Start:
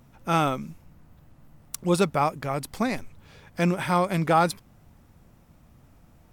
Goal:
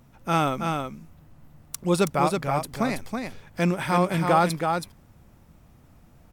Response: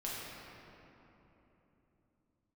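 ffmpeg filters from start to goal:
-af "aecho=1:1:325:0.562"

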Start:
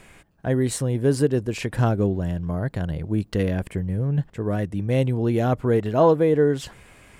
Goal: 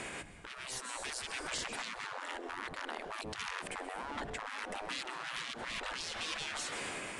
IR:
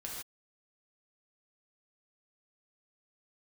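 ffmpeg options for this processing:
-filter_complex "[0:a]aeval=exprs='0.0841*(abs(mod(val(0)/0.0841+3,4)-2)-1)':c=same,areverse,acompressor=threshold=0.0112:ratio=6,areverse,aresample=22050,aresample=44100,asplit=2[s0][s1];[1:a]atrim=start_sample=2205,adelay=131[s2];[s1][s2]afir=irnorm=-1:irlink=0,volume=0.188[s3];[s0][s3]amix=inputs=2:normalize=0,afftfilt=real='re*lt(hypot(re,im),0.0112)':imag='im*lt(hypot(re,im),0.0112)':win_size=1024:overlap=0.75,alimiter=level_in=10.6:limit=0.0631:level=0:latency=1:release=166,volume=0.0944,dynaudnorm=f=350:g=5:m=2,volume=3.55"

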